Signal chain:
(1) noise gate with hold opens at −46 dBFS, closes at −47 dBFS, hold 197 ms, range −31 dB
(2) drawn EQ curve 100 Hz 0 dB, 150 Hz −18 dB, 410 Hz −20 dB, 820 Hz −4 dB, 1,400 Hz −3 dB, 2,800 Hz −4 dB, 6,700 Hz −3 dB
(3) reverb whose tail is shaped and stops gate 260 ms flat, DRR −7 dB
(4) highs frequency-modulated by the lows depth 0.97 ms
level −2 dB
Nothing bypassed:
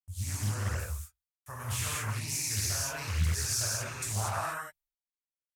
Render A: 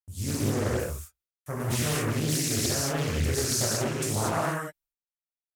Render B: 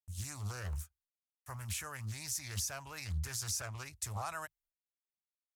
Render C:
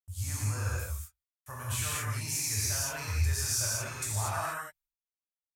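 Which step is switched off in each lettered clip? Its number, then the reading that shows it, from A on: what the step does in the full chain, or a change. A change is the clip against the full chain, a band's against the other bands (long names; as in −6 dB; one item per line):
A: 2, 250 Hz band +11.5 dB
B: 3, change in momentary loudness spread −2 LU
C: 4, 250 Hz band −2.5 dB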